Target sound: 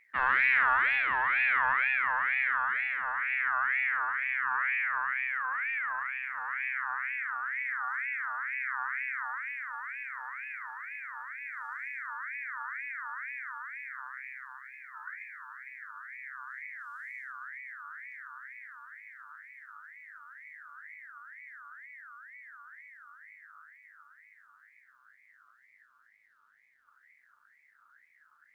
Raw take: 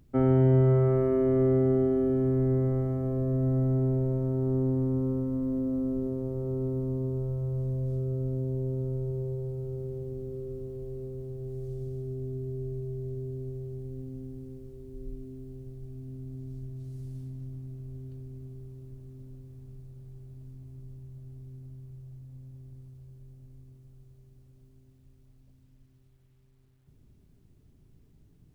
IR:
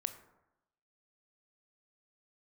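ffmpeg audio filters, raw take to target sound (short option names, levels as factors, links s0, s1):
-filter_complex "[0:a]aeval=exprs='0.211*(cos(1*acos(clip(val(0)/0.211,-1,1)))-cos(1*PI/2))+0.0133*(cos(6*acos(clip(val(0)/0.211,-1,1)))-cos(6*PI/2))':c=same[s0];[1:a]atrim=start_sample=2205[s1];[s0][s1]afir=irnorm=-1:irlink=0,aeval=exprs='val(0)*sin(2*PI*1700*n/s+1700*0.25/2.1*sin(2*PI*2.1*n/s))':c=same,volume=0.75"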